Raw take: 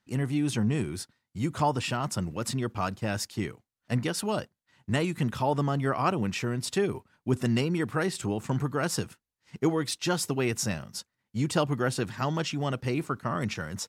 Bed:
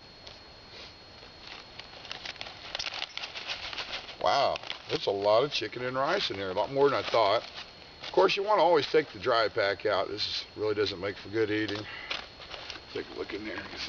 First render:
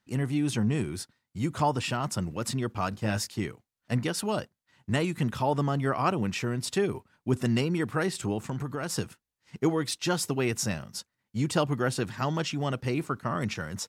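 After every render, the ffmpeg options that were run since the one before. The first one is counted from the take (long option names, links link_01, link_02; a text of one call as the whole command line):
ffmpeg -i in.wav -filter_complex "[0:a]asettb=1/sr,asplit=3[link_01][link_02][link_03];[link_01]atrim=end=2.904[link_04];[link_02]atrim=start=2.9:end=3.34,asetpts=PTS-STARTPTS,afade=type=in:duration=0.004:curve=qsin,afade=type=out:start_time=0.436:duration=0.004:curve=qsin,asplit=2[link_05][link_06];[link_06]adelay=19,volume=-6dB[link_07];[link_05][link_07]amix=inputs=2:normalize=0,atrim=end_sample=19404[link_08];[link_03]atrim=start=3.336[link_09];[link_04][link_08]acrossfade=duration=0.004:curve1=hsin:curve2=qsin[link_10];[link_10][link_09]acrossfade=duration=0.004:curve1=qsin:curve2=hsin,asettb=1/sr,asplit=3[link_11][link_12][link_13];[link_11]atrim=end=8.424[link_14];[link_12]atrim=start=8.42:end=8.96,asetpts=PTS-STARTPTS,afade=type=in:duration=0.004:curve=qsin,afade=type=out:start_time=0.536:duration=0.004:curve=qsin,acompressor=threshold=-28dB:ratio=6:attack=3.2:release=140:knee=1:detection=peak[link_15];[link_13]atrim=start=8.956[link_16];[link_14][link_15]acrossfade=duration=0.004:curve1=hsin:curve2=qsin[link_17];[link_17][link_16]acrossfade=duration=0.004:curve1=qsin:curve2=hsin" out.wav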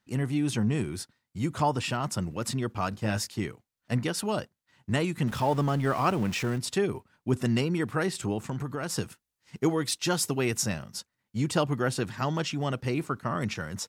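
ffmpeg -i in.wav -filter_complex "[0:a]asettb=1/sr,asplit=3[link_01][link_02][link_03];[link_01]atrim=end=5.274[link_04];[link_02]atrim=start=5.27:end=6.58,asetpts=PTS-STARTPTS,afade=type=in:duration=0.004:curve=qsin,afade=type=out:start_time=1.306:duration=0.004:curve=qsin,aeval=exprs='val(0)+0.5*0.0133*sgn(val(0))':channel_layout=same[link_05];[link_03]atrim=start=6.576[link_06];[link_04][link_05]acrossfade=duration=0.004:curve1=hsin:curve2=qsin[link_07];[link_07][link_06]acrossfade=duration=0.004:curve1=qsin:curve2=hsin,asettb=1/sr,asplit=3[link_08][link_09][link_10];[link_08]atrim=end=9.034[link_11];[link_09]atrim=start=9.03:end=10.62,asetpts=PTS-STARTPTS,afade=type=in:duration=0.004:curve=qsin,afade=type=out:start_time=1.586:duration=0.004:curve=qsin,highshelf=frequency=5100:gain=4.5[link_12];[link_10]atrim=start=10.616[link_13];[link_11][link_12]acrossfade=duration=0.004:curve1=hsin:curve2=qsin[link_14];[link_14][link_13]acrossfade=duration=0.004:curve1=qsin:curve2=hsin" out.wav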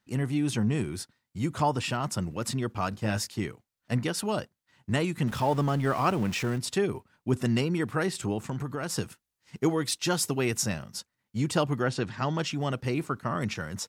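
ffmpeg -i in.wav -filter_complex "[0:a]asplit=3[link_01][link_02][link_03];[link_01]afade=type=out:start_time=11.83:duration=0.02[link_04];[link_02]lowpass=6000,afade=type=in:start_time=11.83:duration=0.02,afade=type=out:start_time=12.37:duration=0.02[link_05];[link_03]afade=type=in:start_time=12.37:duration=0.02[link_06];[link_04][link_05][link_06]amix=inputs=3:normalize=0" out.wav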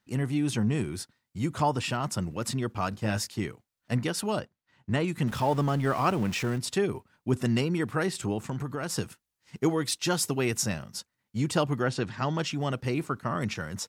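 ffmpeg -i in.wav -filter_complex "[0:a]asettb=1/sr,asplit=3[link_01][link_02][link_03];[link_01]atrim=end=4.394[link_04];[link_02]atrim=start=4.39:end=5.08,asetpts=PTS-STARTPTS,afade=type=in:duration=0.004:curve=qsin,afade=type=out:start_time=0.686:duration=0.004:curve=qsin,lowpass=frequency=3300:poles=1[link_05];[link_03]atrim=start=5.076[link_06];[link_04][link_05]acrossfade=duration=0.004:curve1=hsin:curve2=qsin[link_07];[link_07][link_06]acrossfade=duration=0.004:curve1=qsin:curve2=hsin" out.wav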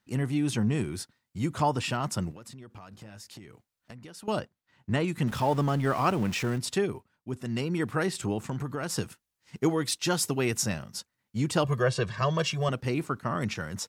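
ffmpeg -i in.wav -filter_complex "[0:a]asettb=1/sr,asplit=3[link_01][link_02][link_03];[link_01]atrim=end=2.314[link_04];[link_02]atrim=start=2.31:end=4.28,asetpts=PTS-STARTPTS,afade=type=in:duration=0.004:curve=qsin,afade=type=out:start_time=1.966:duration=0.004:curve=qsin,acompressor=threshold=-42dB:ratio=12:attack=3.2:release=140:knee=1:detection=peak[link_05];[link_03]atrim=start=4.276[link_06];[link_04][link_05]acrossfade=duration=0.004:curve1=hsin:curve2=qsin[link_07];[link_07][link_06]acrossfade=duration=0.004:curve1=qsin:curve2=hsin,asettb=1/sr,asplit=3[link_08][link_09][link_10];[link_08]atrim=end=11.644[link_11];[link_09]atrim=start=11.64:end=12.69,asetpts=PTS-STARTPTS,afade=type=in:duration=0.004:curve=qsin,afade=type=out:start_time=1.046:duration=0.004:curve=qsin,aecho=1:1:1.8:0.94,atrim=end_sample=46305[link_12];[link_10]atrim=start=12.686[link_13];[link_11][link_12]acrossfade=duration=0.004:curve1=hsin:curve2=qsin[link_14];[link_14][link_13]acrossfade=duration=0.004:curve1=qsin:curve2=hsin,asplit=3[link_15][link_16][link_17];[link_15]atrim=end=7.14,asetpts=PTS-STARTPTS,afade=type=out:start_time=6.77:duration=0.37:silence=0.375837[link_18];[link_16]atrim=start=7.14:end=7.45,asetpts=PTS-STARTPTS,volume=-8.5dB[link_19];[link_17]atrim=start=7.45,asetpts=PTS-STARTPTS,afade=type=in:duration=0.37:silence=0.375837[link_20];[link_18][link_19][link_20]concat=n=3:v=0:a=1" out.wav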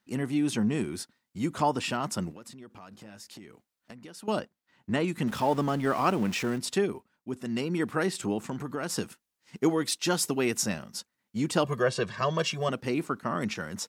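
ffmpeg -i in.wav -af "lowshelf=frequency=160:width_type=q:width=1.5:gain=-6.5" out.wav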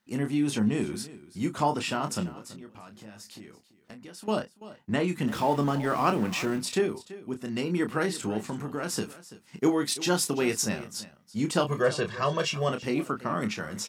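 ffmpeg -i in.wav -filter_complex "[0:a]asplit=2[link_01][link_02];[link_02]adelay=28,volume=-7.5dB[link_03];[link_01][link_03]amix=inputs=2:normalize=0,aecho=1:1:335:0.141" out.wav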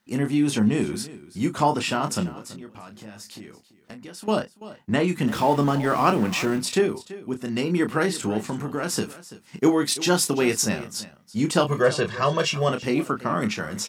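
ffmpeg -i in.wav -af "volume=5dB" out.wav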